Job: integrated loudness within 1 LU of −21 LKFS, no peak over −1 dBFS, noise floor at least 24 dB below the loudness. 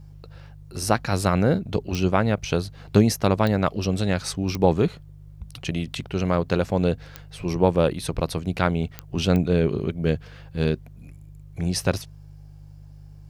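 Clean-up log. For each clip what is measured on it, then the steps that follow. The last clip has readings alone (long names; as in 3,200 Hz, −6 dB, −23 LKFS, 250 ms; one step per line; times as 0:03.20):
number of clicks 6; mains hum 50 Hz; hum harmonics up to 150 Hz; level of the hum −43 dBFS; integrated loudness −24.0 LKFS; sample peak −4.5 dBFS; target loudness −21.0 LKFS
→ click removal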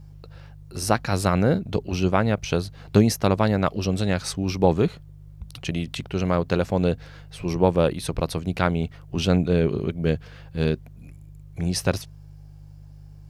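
number of clicks 0; mains hum 50 Hz; hum harmonics up to 150 Hz; level of the hum −43 dBFS
→ hum removal 50 Hz, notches 3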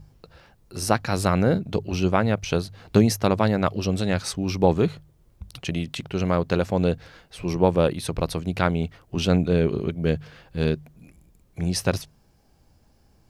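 mains hum none found; integrated loudness −24.0 LKFS; sample peak −4.5 dBFS; target loudness −21.0 LKFS
→ level +3 dB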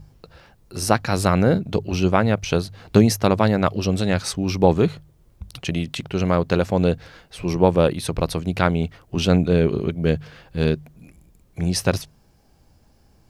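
integrated loudness −21.0 LKFS; sample peak −1.5 dBFS; background noise floor −57 dBFS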